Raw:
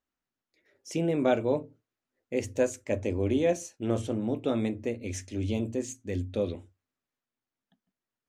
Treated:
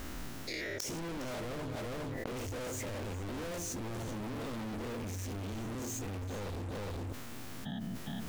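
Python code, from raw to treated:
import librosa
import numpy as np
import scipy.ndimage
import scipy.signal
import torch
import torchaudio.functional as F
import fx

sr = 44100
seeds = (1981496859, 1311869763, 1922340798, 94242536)

y = fx.spec_dilate(x, sr, span_ms=120)
y = fx.low_shelf(y, sr, hz=330.0, db=7.5)
y = fx.leveller(y, sr, passes=5)
y = np.clip(y, -10.0 ** (-28.0 / 20.0), 10.0 ** (-28.0 / 20.0))
y = fx.low_shelf(y, sr, hz=110.0, db=6.0)
y = fx.gate_flip(y, sr, shuts_db=-36.0, range_db=-27)
y = y + 10.0 ** (-13.5 / 20.0) * np.pad(y, (int(411 * sr / 1000.0), 0))[:len(y)]
y = fx.env_flatten(y, sr, amount_pct=100)
y = y * 10.0 ** (7.0 / 20.0)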